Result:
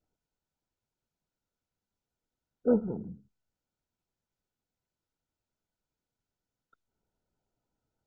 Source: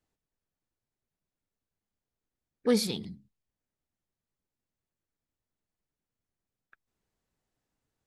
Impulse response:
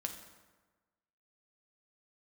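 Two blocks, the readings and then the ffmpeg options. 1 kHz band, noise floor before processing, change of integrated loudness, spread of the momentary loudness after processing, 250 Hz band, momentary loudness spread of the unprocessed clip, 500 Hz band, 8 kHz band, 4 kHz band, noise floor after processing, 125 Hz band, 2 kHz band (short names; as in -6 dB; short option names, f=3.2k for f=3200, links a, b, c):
-3.0 dB, under -85 dBFS, -1.0 dB, 14 LU, 0.0 dB, 14 LU, 0.0 dB, under -35 dB, under -40 dB, under -85 dBFS, 0.0 dB, under -10 dB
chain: -ar 16000 -c:a mp2 -b:a 8k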